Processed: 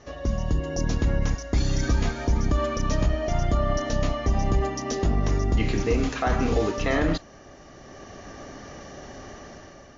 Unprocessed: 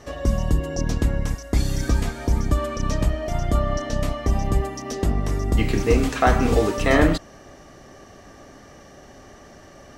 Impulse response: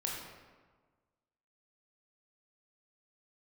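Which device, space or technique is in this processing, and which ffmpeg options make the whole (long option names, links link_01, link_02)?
low-bitrate web radio: -af "dynaudnorm=framelen=280:gausssize=5:maxgain=9.5dB,alimiter=limit=-8.5dB:level=0:latency=1:release=28,volume=-4.5dB" -ar 16000 -c:a libmp3lame -b:a 48k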